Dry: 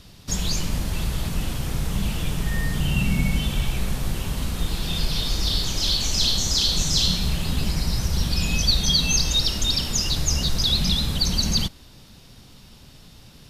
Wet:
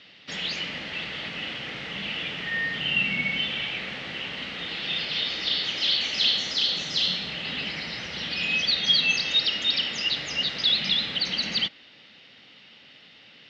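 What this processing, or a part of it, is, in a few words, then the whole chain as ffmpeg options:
phone earpiece: -filter_complex "[0:a]asettb=1/sr,asplit=3[s0][s1][s2];[s0]atrim=end=6.534[s3];[s1]atrim=start=6.53:end=7.45,asetpts=PTS-STARTPTS,afade=t=in:d=0.004:c=qsin,afade=t=out:st=0.916:d=0.004:c=qsin,equalizer=f=2400:w=1.1:g=-4[s4];[s2]atrim=start=7.446[s5];[s3][s4]acrossfade=d=0.004:c1=hsin:c2=qsin[s6];[s6][s5]acrossfade=d=0.004:c1=qsin:c2=hsin,highpass=360,equalizer=f=380:t=q:w=4:g=-5,equalizer=f=690:t=q:w=4:g=-3,equalizer=f=1000:t=q:w=4:g=-8,equalizer=f=2000:t=q:w=4:g=10,equalizer=f=2900:t=q:w=4:g=8,lowpass=f=4100:w=0.5412,lowpass=f=4100:w=1.3066"

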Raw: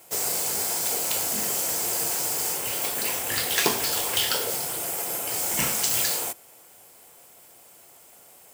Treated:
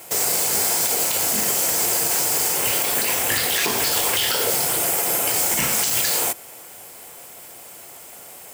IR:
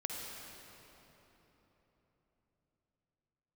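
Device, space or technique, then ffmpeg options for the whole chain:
mastering chain: -af "equalizer=f=2000:t=o:w=0.77:g=2,acompressor=threshold=0.0355:ratio=2,alimiter=level_in=9.44:limit=0.891:release=50:level=0:latency=1,volume=0.355"

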